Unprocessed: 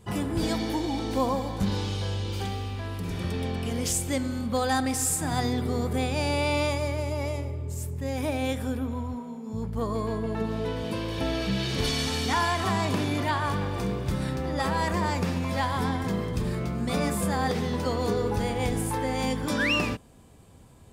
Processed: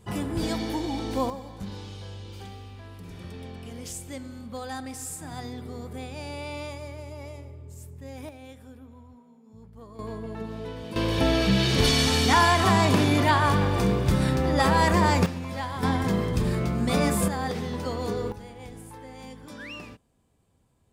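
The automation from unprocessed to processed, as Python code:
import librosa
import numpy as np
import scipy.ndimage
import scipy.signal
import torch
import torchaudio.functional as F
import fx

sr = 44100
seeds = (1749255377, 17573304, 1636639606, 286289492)

y = fx.gain(x, sr, db=fx.steps((0.0, -1.0), (1.3, -10.0), (8.29, -17.0), (9.99, -6.0), (10.96, 6.0), (15.26, -5.0), (15.83, 3.5), (17.28, -3.0), (18.32, -15.0)))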